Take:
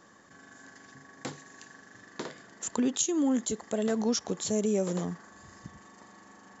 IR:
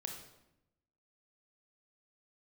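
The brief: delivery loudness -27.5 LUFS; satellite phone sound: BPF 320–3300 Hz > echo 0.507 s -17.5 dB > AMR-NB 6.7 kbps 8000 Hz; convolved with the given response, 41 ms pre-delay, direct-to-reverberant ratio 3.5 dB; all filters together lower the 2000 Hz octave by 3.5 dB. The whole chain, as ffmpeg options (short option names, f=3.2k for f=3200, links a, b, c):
-filter_complex "[0:a]equalizer=f=2k:t=o:g=-4,asplit=2[a][b];[1:a]atrim=start_sample=2205,adelay=41[c];[b][c]afir=irnorm=-1:irlink=0,volume=-2dB[d];[a][d]amix=inputs=2:normalize=0,highpass=320,lowpass=3.3k,aecho=1:1:507:0.133,volume=6.5dB" -ar 8000 -c:a libopencore_amrnb -b:a 6700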